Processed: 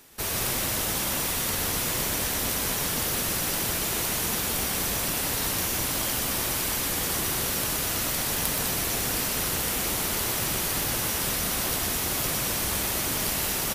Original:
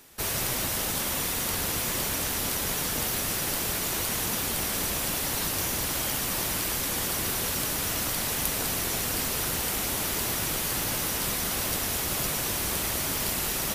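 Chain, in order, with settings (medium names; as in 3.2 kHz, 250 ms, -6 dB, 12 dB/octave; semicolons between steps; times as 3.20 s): integer overflow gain 9.5 dB; loudspeakers at several distances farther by 42 m -5 dB, 75 m -11 dB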